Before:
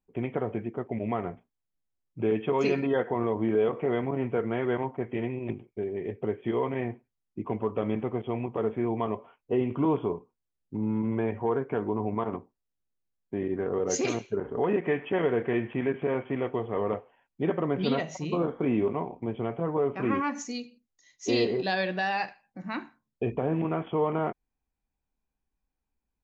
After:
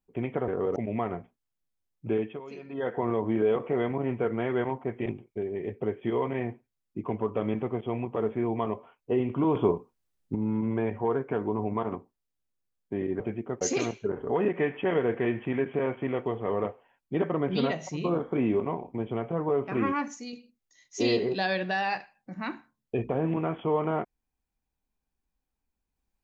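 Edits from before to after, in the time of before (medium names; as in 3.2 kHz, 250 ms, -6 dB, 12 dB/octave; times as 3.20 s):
0.48–0.89 s: swap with 13.61–13.89 s
2.23–3.12 s: dip -17.5 dB, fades 0.32 s
5.19–5.47 s: delete
9.96–10.76 s: gain +6 dB
20.36–20.61 s: gain -5 dB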